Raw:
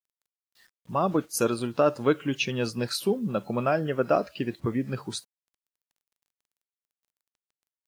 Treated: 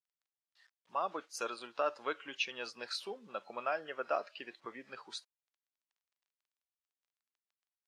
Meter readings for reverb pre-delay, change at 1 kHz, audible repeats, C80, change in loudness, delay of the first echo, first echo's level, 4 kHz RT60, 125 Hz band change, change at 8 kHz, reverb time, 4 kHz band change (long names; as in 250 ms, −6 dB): no reverb audible, −8.0 dB, no echo audible, no reverb audible, −12.0 dB, no echo audible, no echo audible, no reverb audible, below −35 dB, −14.0 dB, no reverb audible, −7.0 dB